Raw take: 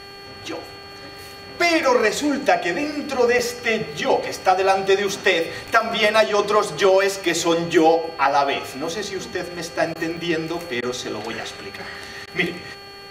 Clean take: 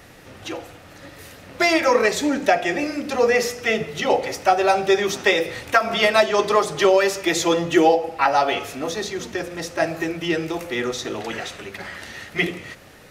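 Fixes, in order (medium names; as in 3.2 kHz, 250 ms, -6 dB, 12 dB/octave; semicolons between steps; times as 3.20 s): de-hum 398.1 Hz, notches 8; band-stop 4.4 kHz, Q 30; interpolate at 0.83/2.92/3.39/5.67/9.04/10.17/11.43 s, 3.8 ms; interpolate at 9.94/10.81/12.26 s, 13 ms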